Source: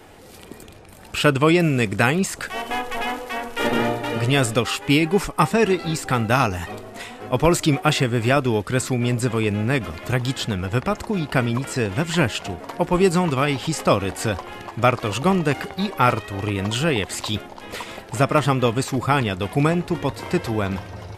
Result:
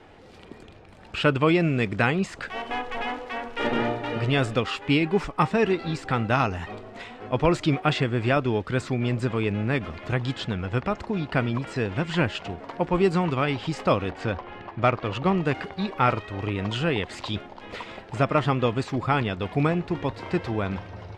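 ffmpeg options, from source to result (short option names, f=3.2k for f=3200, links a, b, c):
-filter_complex "[0:a]asettb=1/sr,asplit=3[a][b][c];[a]atrim=end=14.104[d];[b]atrim=start=14.1:end=15.37,asetpts=PTS-STARTPTS,afade=t=in:d=0.004:c=qsin,afade=t=out:st=1.266:d=0.004:c=qsin,adynamicsmooth=sensitivity=2.5:basefreq=3.8k[e];[c]atrim=start=15.366[f];[d][e]acrossfade=d=0.004:c1=hsin:c2=qsin[g];[g][f]acrossfade=d=0.004:c1=qsin:c2=hsin,lowpass=3.9k,volume=-4dB"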